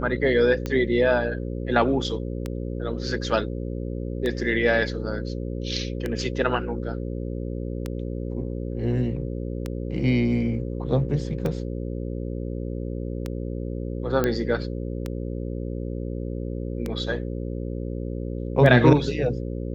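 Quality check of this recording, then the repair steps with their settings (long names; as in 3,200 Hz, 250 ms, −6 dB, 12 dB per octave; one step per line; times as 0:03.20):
mains buzz 60 Hz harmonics 9 −30 dBFS
scratch tick 33 1/3 rpm −15 dBFS
0:14.24: click −10 dBFS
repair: click removal
hum removal 60 Hz, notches 9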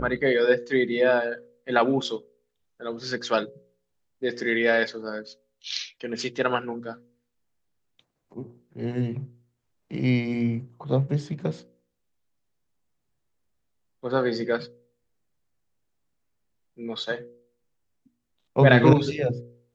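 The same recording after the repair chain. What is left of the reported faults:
none of them is left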